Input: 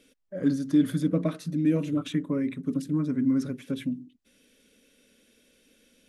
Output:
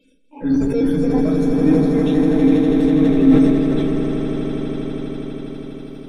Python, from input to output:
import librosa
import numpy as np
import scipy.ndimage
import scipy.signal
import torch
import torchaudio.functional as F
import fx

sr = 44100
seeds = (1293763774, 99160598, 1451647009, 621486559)

p1 = fx.pitch_trill(x, sr, semitones=7.5, every_ms=201)
p2 = fx.peak_eq(p1, sr, hz=880.0, db=-10.0, octaves=0.34)
p3 = fx.schmitt(p2, sr, flips_db=-25.5)
p4 = p2 + F.gain(torch.from_numpy(p3), -7.5).numpy()
p5 = fx.spec_topn(p4, sr, count=64)
p6 = p5 + fx.echo_swell(p5, sr, ms=81, loudest=8, wet_db=-7.5, dry=0)
p7 = fx.room_shoebox(p6, sr, seeds[0], volume_m3=230.0, walls='furnished', distance_m=2.1)
p8 = fx.sustainer(p7, sr, db_per_s=27.0)
y = F.gain(torch.from_numpy(p8), -1.0).numpy()